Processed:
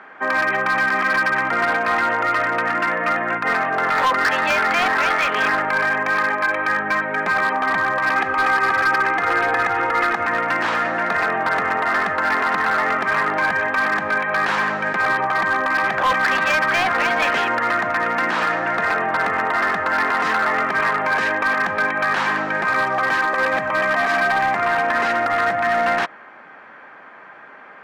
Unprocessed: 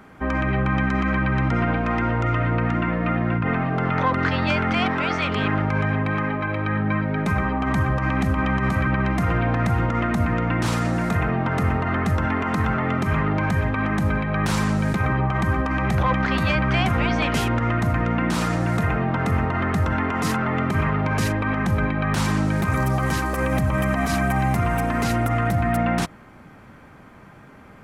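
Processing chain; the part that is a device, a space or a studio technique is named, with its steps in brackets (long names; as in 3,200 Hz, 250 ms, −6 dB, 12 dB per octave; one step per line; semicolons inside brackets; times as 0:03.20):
megaphone (band-pass filter 610–2,600 Hz; parametric band 1,700 Hz +7 dB 0.23 octaves; hard clipping −21.5 dBFS, distortion −17 dB)
0:08.15–0:10.27: comb filter 2.4 ms, depth 59%
level +8 dB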